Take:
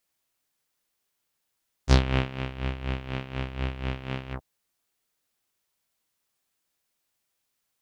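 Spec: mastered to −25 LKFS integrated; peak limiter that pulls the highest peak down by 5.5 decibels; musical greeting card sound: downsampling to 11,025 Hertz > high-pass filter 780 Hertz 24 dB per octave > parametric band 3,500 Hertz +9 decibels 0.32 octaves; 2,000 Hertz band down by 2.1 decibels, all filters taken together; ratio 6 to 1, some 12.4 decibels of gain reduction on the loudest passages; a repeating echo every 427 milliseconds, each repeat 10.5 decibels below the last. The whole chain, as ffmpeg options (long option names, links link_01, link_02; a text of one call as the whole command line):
ffmpeg -i in.wav -af "equalizer=frequency=2000:width_type=o:gain=-3.5,acompressor=threshold=-28dB:ratio=6,alimiter=limit=-23.5dB:level=0:latency=1,aecho=1:1:427|854|1281:0.299|0.0896|0.0269,aresample=11025,aresample=44100,highpass=frequency=780:width=0.5412,highpass=frequency=780:width=1.3066,equalizer=frequency=3500:width_type=o:width=0.32:gain=9,volume=18dB" out.wav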